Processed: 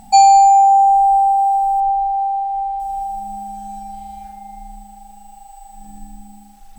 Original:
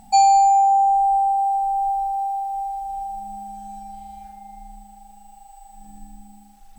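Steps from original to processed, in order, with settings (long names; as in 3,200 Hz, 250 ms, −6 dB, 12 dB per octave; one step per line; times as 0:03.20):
0:01.80–0:02.80: low-pass filter 3,600 Hz 12 dB per octave
level +5.5 dB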